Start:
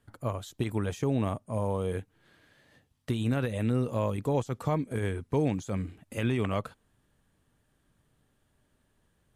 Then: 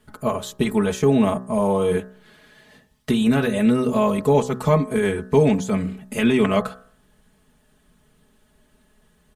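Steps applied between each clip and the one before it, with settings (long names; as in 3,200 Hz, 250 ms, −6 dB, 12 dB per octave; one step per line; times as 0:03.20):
comb filter 4.7 ms, depth 95%
hum removal 62.92 Hz, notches 30
level +9 dB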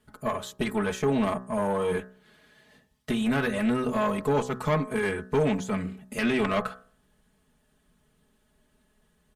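dynamic equaliser 1,600 Hz, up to +7 dB, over −38 dBFS, Q 0.79
tube saturation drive 11 dB, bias 0.45
level −5.5 dB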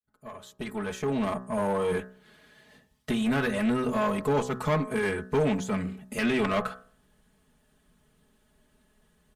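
fade in at the beginning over 1.66 s
in parallel at −6 dB: soft clipping −31.5 dBFS, distortion −7 dB
on the sum: level −2 dB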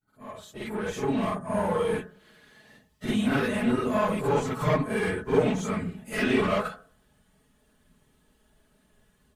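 random phases in long frames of 50 ms
backwards echo 48 ms −5 dB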